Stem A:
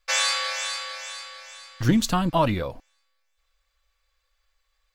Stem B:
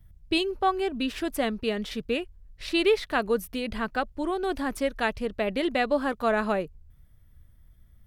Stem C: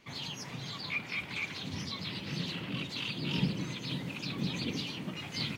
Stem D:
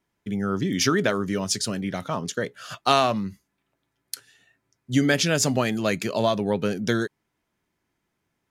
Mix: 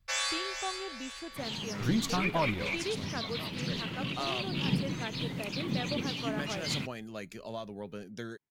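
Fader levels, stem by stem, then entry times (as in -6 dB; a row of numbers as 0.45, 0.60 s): -9.0, -14.0, +1.0, -17.5 dB; 0.00, 0.00, 1.30, 1.30 s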